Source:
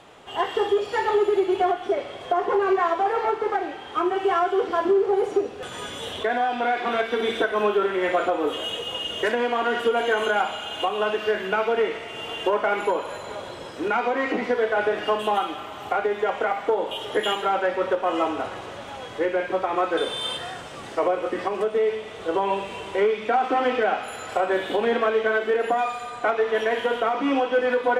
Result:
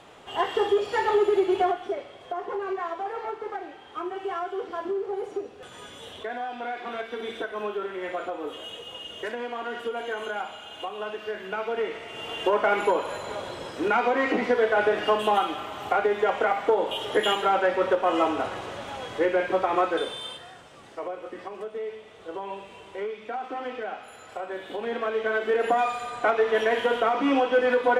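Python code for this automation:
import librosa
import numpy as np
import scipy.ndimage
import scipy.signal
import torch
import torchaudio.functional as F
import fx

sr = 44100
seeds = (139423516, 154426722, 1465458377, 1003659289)

y = fx.gain(x, sr, db=fx.line((1.6, -1.0), (2.11, -9.5), (11.31, -9.5), (12.66, 0.5), (19.79, 0.5), (20.44, -11.5), (24.58, -11.5), (25.68, 0.0)))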